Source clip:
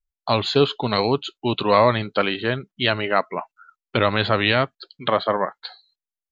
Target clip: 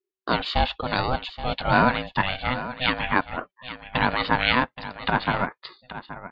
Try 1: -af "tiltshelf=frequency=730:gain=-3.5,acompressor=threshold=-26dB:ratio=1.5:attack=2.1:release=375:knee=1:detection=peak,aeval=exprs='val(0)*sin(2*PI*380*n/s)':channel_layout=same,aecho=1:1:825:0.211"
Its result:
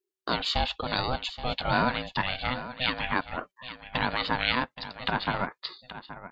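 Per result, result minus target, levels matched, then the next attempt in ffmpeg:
downward compressor: peak gain reduction +7 dB; 4,000 Hz band +3.5 dB
-af "tiltshelf=frequency=730:gain=-3.5,aeval=exprs='val(0)*sin(2*PI*380*n/s)':channel_layout=same,aecho=1:1:825:0.211"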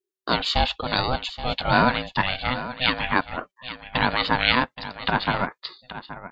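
4,000 Hz band +3.0 dB
-af "lowpass=3100,tiltshelf=frequency=730:gain=-3.5,aeval=exprs='val(0)*sin(2*PI*380*n/s)':channel_layout=same,aecho=1:1:825:0.211"

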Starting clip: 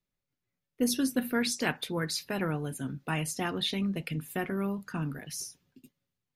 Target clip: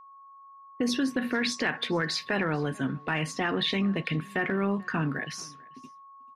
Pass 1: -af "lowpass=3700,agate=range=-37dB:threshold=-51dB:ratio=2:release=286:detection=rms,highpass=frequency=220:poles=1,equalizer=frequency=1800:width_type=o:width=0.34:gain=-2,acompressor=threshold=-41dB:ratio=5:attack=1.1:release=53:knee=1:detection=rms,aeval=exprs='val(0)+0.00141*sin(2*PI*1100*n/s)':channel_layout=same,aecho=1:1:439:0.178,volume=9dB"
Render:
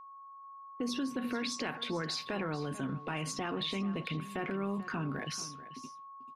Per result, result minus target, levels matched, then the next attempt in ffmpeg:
echo-to-direct +9.5 dB; downward compressor: peak gain reduction +6 dB; 2,000 Hz band −3.5 dB
-af "lowpass=3700,agate=range=-37dB:threshold=-51dB:ratio=2:release=286:detection=rms,highpass=frequency=220:poles=1,equalizer=frequency=1800:width_type=o:width=0.34:gain=-2,acompressor=threshold=-41dB:ratio=5:attack=1.1:release=53:knee=1:detection=rms,aeval=exprs='val(0)+0.00141*sin(2*PI*1100*n/s)':channel_layout=same,aecho=1:1:439:0.0596,volume=9dB"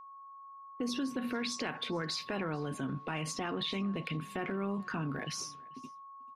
downward compressor: peak gain reduction +6 dB; 2,000 Hz band −3.5 dB
-af "lowpass=3700,agate=range=-37dB:threshold=-51dB:ratio=2:release=286:detection=rms,highpass=frequency=220:poles=1,equalizer=frequency=1800:width_type=o:width=0.34:gain=-2,acompressor=threshold=-31dB:ratio=5:attack=1.1:release=53:knee=1:detection=rms,aeval=exprs='val(0)+0.00141*sin(2*PI*1100*n/s)':channel_layout=same,aecho=1:1:439:0.0596,volume=9dB"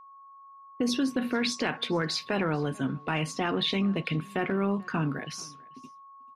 2,000 Hz band −3.5 dB
-af "lowpass=3700,agate=range=-37dB:threshold=-51dB:ratio=2:release=286:detection=rms,highpass=frequency=220:poles=1,equalizer=frequency=1800:width_type=o:width=0.34:gain=7,acompressor=threshold=-31dB:ratio=5:attack=1.1:release=53:knee=1:detection=rms,aeval=exprs='val(0)+0.00141*sin(2*PI*1100*n/s)':channel_layout=same,aecho=1:1:439:0.0596,volume=9dB"

